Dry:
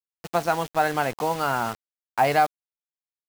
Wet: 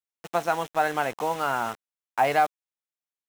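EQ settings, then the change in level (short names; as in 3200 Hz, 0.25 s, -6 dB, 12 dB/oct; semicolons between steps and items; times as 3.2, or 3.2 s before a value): low shelf 180 Hz -10.5 dB; bell 4600 Hz -8.5 dB 0.22 oct; high shelf 9500 Hz -5 dB; -1.0 dB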